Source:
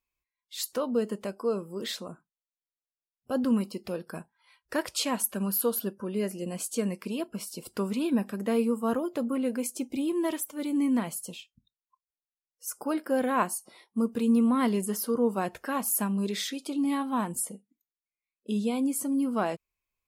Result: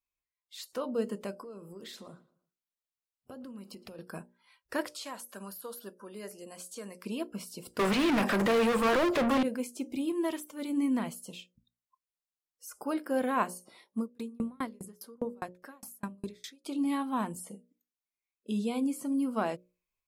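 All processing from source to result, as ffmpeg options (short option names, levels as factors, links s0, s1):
-filter_complex "[0:a]asettb=1/sr,asplit=3[s0][s1][s2];[s0]atrim=end=1.414[s3];[s1]atrim=start=1.41:end=3.99,asetpts=PTS-STARTPTS,afade=t=in:d=0.004:c=qsin,afade=t=out:st=2.576:d=0.004:c=qsin,acompressor=threshold=0.0112:ratio=12:attack=3.2:release=140:knee=1:detection=peak,asplit=2[s4][s5];[s5]adelay=114,lowpass=f=4600:p=1,volume=0.112,asplit=2[s6][s7];[s7]adelay=114,lowpass=f=4600:p=1,volume=0.36,asplit=2[s8][s9];[s9]adelay=114,lowpass=f=4600:p=1,volume=0.36[s10];[s4][s6][s8][s10]amix=inputs=4:normalize=0,atrim=end_sample=113778[s11];[s2]atrim=start=3.986[s12];[s3][s11]acrossfade=d=0.004:c1=hsin:c2=qsin[s13];[s13][s12]acrossfade=d=0.004:c1=qsin:c2=hsin,asettb=1/sr,asplit=3[s14][s15][s16];[s14]atrim=end=4.874[s17];[s15]atrim=start=4.87:end=7.04,asetpts=PTS-STARTPTS,afade=t=in:d=0.004:c=qsin,afade=t=out:st=2.166:d=0.004:c=qsin,highpass=f=890:p=1,equalizer=f=2600:t=o:w=0.67:g=-7,acompressor=threshold=0.0224:ratio=3:attack=3.2:release=140:knee=1:detection=peak[s18];[s16]atrim=start=7.036[s19];[s17][s18]acrossfade=d=0.004:c1=hsin:c2=qsin[s20];[s20][s19]acrossfade=d=0.004:c1=qsin:c2=hsin,asettb=1/sr,asplit=3[s21][s22][s23];[s21]atrim=end=7.794[s24];[s22]atrim=start=7.79:end=9.43,asetpts=PTS-STARTPTS,afade=t=in:d=0.004:c=qsin,afade=t=out:st=1.636:d=0.004:c=qsin,highpass=f=200:p=1,asplit=2[s25][s26];[s26]highpass=f=720:p=1,volume=79.4,asoftclip=type=tanh:threshold=0.15[s27];[s25][s27]amix=inputs=2:normalize=0,lowpass=f=3900:p=1,volume=0.501[s28];[s23]atrim=start=9.426[s29];[s24][s28]acrossfade=d=0.004:c1=hsin:c2=qsin[s30];[s30][s29]acrossfade=d=0.004:c1=qsin:c2=hsin,asettb=1/sr,asplit=3[s31][s32][s33];[s31]atrim=end=13.994[s34];[s32]atrim=start=13.99:end=16.65,asetpts=PTS-STARTPTS,afade=t=in:d=0.004:c=qsin,afade=t=out:st=2.656:d=0.004:c=qsin,equalizer=f=2900:w=7.4:g=-7.5,aeval=exprs='val(0)*pow(10,-39*if(lt(mod(4.9*n/s,1),2*abs(4.9)/1000),1-mod(4.9*n/s,1)/(2*abs(4.9)/1000),(mod(4.9*n/s,1)-2*abs(4.9)/1000)/(1-2*abs(4.9)/1000))/20)':c=same[s35];[s33]atrim=start=16.646[s36];[s34][s35]acrossfade=d=0.004:c1=hsin:c2=qsin[s37];[s37][s36]acrossfade=d=0.004:c1=qsin:c2=hsin,acrossover=split=4500[s38][s39];[s39]acompressor=threshold=0.01:ratio=4:attack=1:release=60[s40];[s38][s40]amix=inputs=2:normalize=0,bandreject=f=60:t=h:w=6,bandreject=f=120:t=h:w=6,bandreject=f=180:t=h:w=6,bandreject=f=240:t=h:w=6,bandreject=f=300:t=h:w=6,bandreject=f=360:t=h:w=6,bandreject=f=420:t=h:w=6,bandreject=f=480:t=h:w=6,bandreject=f=540:t=h:w=6,bandreject=f=600:t=h:w=6,dynaudnorm=f=500:g=3:m=1.78,volume=0.422"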